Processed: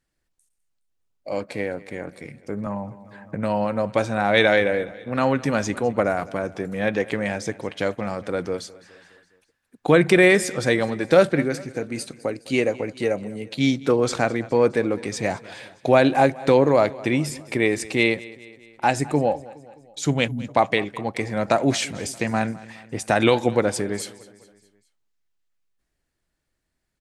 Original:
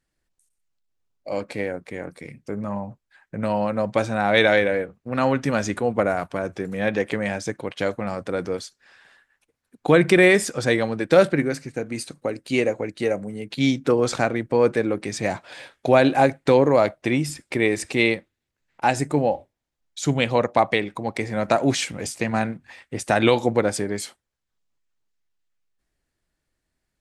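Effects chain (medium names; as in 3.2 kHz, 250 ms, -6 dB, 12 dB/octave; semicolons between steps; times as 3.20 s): 20.28–20.49 s: spectral selection erased 320–9900 Hz; feedback delay 208 ms, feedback 54%, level -20 dB; 2.66–3.35 s: three bands compressed up and down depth 70%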